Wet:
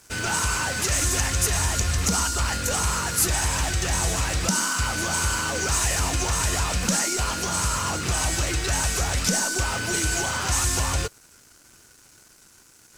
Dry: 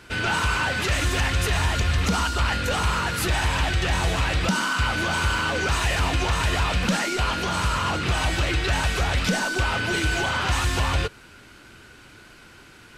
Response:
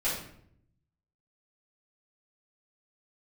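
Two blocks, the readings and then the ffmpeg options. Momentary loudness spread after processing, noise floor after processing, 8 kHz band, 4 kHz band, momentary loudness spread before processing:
3 LU, −54 dBFS, +10.5 dB, −1.0 dB, 1 LU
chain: -af "aeval=exprs='sgn(val(0))*max(abs(val(0))-0.00355,0)':channel_layout=same,highshelf=frequency=4700:width_type=q:width=1.5:gain=11,volume=-2dB"

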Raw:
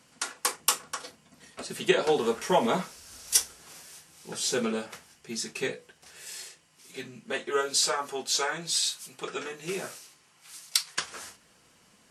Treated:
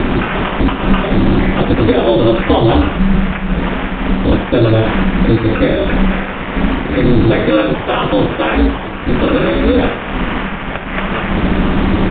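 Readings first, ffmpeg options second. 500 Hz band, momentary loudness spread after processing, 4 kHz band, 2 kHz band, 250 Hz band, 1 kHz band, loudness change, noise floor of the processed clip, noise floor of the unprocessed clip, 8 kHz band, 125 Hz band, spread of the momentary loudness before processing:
+16.5 dB, 7 LU, +7.0 dB, +16.5 dB, +25.0 dB, +15.5 dB, +14.5 dB, −22 dBFS, −62 dBFS, below −40 dB, +31.0 dB, 21 LU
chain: -filter_complex "[0:a]aeval=exprs='val(0)+0.5*0.0596*sgn(val(0))':channel_layout=same,highpass=48,equalizer=frequency=83:width=3.8:gain=10,acompressor=threshold=-27dB:ratio=3,aemphasis=mode=reproduction:type=riaa,acrusher=samples=11:mix=1:aa=0.000001,aeval=exprs='val(0)*sin(2*PI*110*n/s)':channel_layout=same,asplit=2[link_01][link_02];[link_02]aecho=0:1:73:0.316[link_03];[link_01][link_03]amix=inputs=2:normalize=0,aresample=8000,aresample=44100,apsyclip=18.5dB,volume=-1.5dB"

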